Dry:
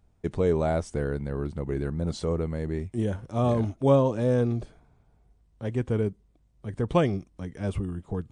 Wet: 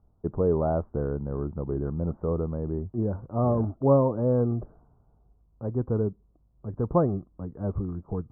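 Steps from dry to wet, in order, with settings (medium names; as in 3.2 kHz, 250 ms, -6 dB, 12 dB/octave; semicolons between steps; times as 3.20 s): steep low-pass 1.3 kHz 48 dB/octave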